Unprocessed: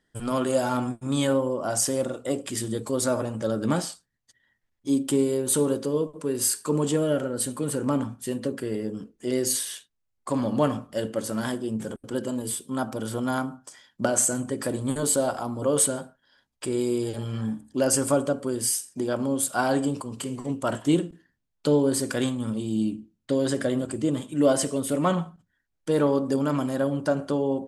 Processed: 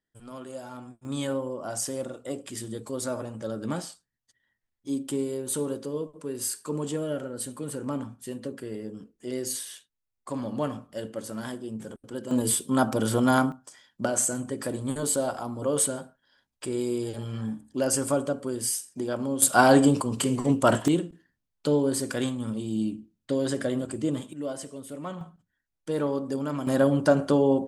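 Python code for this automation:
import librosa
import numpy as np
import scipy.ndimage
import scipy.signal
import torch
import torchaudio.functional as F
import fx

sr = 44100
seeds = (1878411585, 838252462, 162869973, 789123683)

y = fx.gain(x, sr, db=fx.steps((0.0, -15.5), (1.05, -6.5), (12.31, 5.5), (13.52, -3.0), (19.42, 6.5), (20.88, -2.5), (24.33, -13.0), (25.21, -5.5), (26.67, 4.0)))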